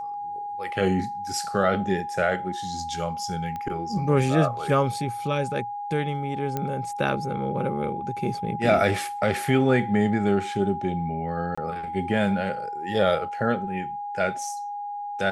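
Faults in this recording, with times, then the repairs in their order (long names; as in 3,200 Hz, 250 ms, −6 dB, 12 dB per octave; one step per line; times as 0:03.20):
whistle 820 Hz −30 dBFS
0:03.56: click −21 dBFS
0:06.57: click −14 dBFS
0:11.55–0:11.57: drop-out 25 ms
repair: click removal
notch filter 820 Hz, Q 30
repair the gap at 0:11.55, 25 ms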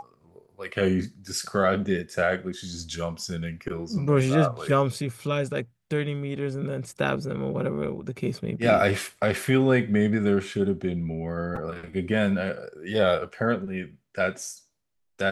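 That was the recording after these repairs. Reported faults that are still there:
none of them is left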